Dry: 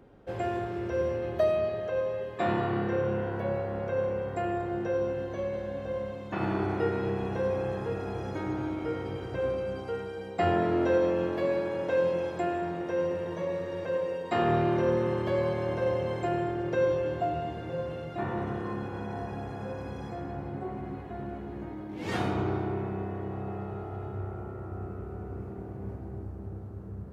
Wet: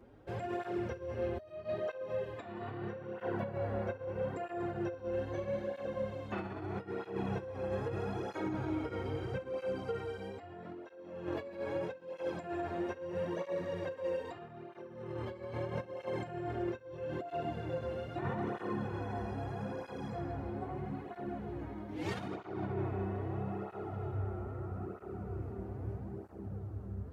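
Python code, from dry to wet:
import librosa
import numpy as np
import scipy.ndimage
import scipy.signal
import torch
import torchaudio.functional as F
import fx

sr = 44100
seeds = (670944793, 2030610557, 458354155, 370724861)

y = fx.over_compress(x, sr, threshold_db=-32.0, ratio=-0.5)
y = fx.flanger_cancel(y, sr, hz=0.78, depth_ms=7.2)
y = y * librosa.db_to_amplitude(-2.5)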